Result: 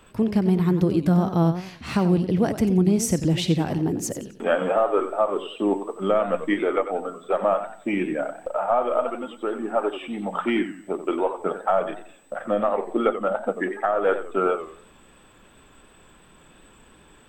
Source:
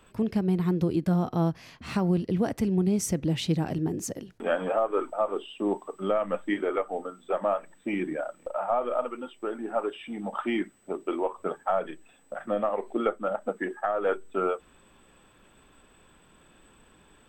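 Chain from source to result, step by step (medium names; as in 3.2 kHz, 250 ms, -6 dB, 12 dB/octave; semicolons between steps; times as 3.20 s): modulated delay 91 ms, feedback 34%, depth 171 cents, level -11 dB; trim +5 dB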